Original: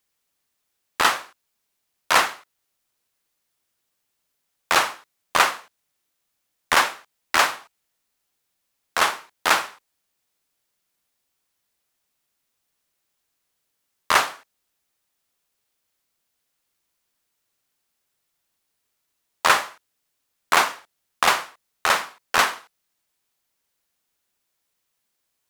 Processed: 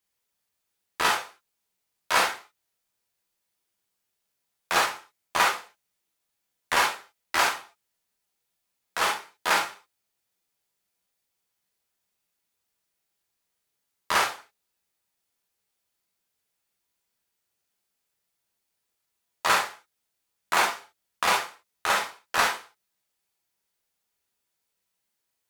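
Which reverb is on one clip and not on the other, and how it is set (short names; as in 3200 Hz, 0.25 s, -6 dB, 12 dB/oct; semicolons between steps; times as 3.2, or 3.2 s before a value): non-linear reverb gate 90 ms flat, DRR -2 dB; gain -8 dB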